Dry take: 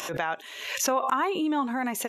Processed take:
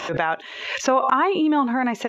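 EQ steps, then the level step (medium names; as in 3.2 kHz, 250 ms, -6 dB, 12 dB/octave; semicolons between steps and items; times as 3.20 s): distance through air 160 m; peaking EQ 8.9 kHz -12 dB 0.25 oct; +7.5 dB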